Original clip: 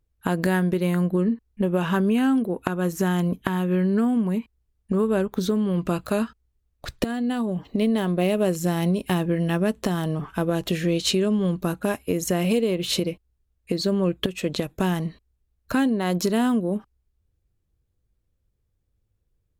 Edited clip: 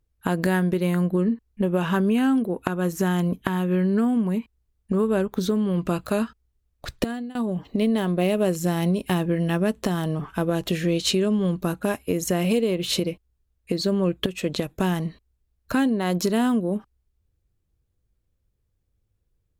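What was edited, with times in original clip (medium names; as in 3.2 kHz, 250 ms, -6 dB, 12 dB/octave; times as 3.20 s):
7.06–7.35 s: fade out, to -22.5 dB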